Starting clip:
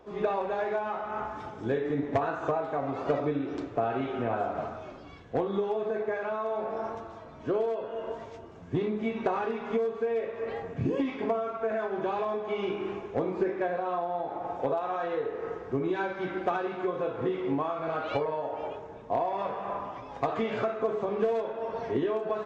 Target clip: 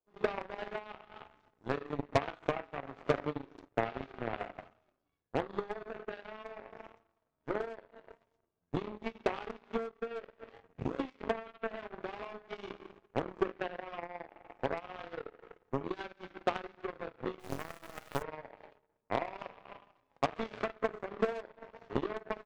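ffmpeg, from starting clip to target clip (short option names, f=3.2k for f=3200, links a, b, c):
-filter_complex "[0:a]asplit=3[a][b][c];[a]afade=t=out:st=17.39:d=0.02[d];[b]acrusher=bits=4:dc=4:mix=0:aa=0.000001,afade=t=in:st=17.39:d=0.02,afade=t=out:st=18.21:d=0.02[e];[c]afade=t=in:st=18.21:d=0.02[f];[d][e][f]amix=inputs=3:normalize=0,aeval=exprs='0.141*(cos(1*acos(clip(val(0)/0.141,-1,1)))-cos(1*PI/2))+0.00501*(cos(2*acos(clip(val(0)/0.141,-1,1)))-cos(2*PI/2))+0.0447*(cos(3*acos(clip(val(0)/0.141,-1,1)))-cos(3*PI/2))+0.000794*(cos(7*acos(clip(val(0)/0.141,-1,1)))-cos(7*PI/2))':c=same"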